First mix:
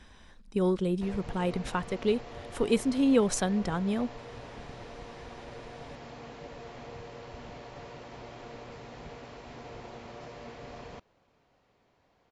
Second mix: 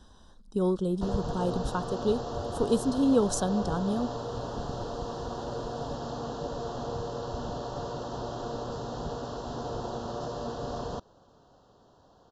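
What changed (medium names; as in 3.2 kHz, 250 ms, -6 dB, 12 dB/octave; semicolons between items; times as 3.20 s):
background +10.0 dB; master: add Butterworth band-stop 2.2 kHz, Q 1.1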